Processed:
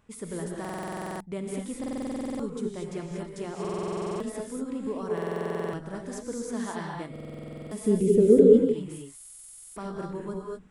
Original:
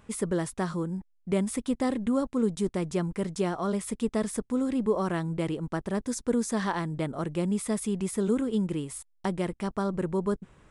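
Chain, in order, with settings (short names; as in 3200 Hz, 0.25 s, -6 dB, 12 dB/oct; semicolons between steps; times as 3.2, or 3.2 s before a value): 7.82–8.51 resonant low shelf 680 Hz +12 dB, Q 3; non-linear reverb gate 0.26 s rising, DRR -1 dB; stuck buffer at 0.6/1.79/3.6/5.13/7.11/9.16, samples 2048, times 12; gain -8.5 dB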